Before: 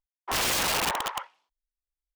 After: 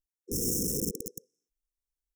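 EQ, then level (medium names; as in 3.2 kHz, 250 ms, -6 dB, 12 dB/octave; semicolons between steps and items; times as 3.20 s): dynamic bell 200 Hz, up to +7 dB, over -50 dBFS, Q 0.87; dynamic bell 3.3 kHz, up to -6 dB, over -42 dBFS, Q 0.75; brick-wall FIR band-stop 510–5200 Hz; 0.0 dB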